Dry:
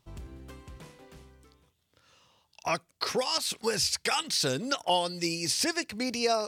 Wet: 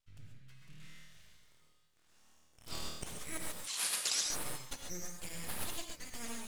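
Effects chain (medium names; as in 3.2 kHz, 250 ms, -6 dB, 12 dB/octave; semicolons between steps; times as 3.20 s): inverse Chebyshev band-stop 190–760 Hz, stop band 50 dB; treble shelf 7.8 kHz -8 dB; 0.59–2.89 s: flutter echo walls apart 4.4 m, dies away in 1.3 s; full-wave rectifier; 3.60–4.26 s: frequency weighting ITU-R 468; gated-style reverb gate 160 ms rising, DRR 1.5 dB; trim -7.5 dB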